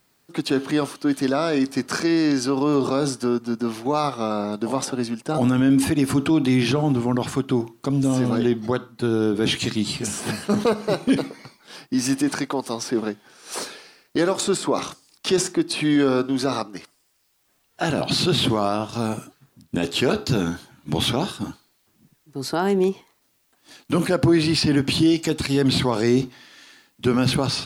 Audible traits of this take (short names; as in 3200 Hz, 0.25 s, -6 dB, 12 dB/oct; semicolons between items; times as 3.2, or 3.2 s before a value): noise floor -66 dBFS; spectral tilt -5.0 dB/oct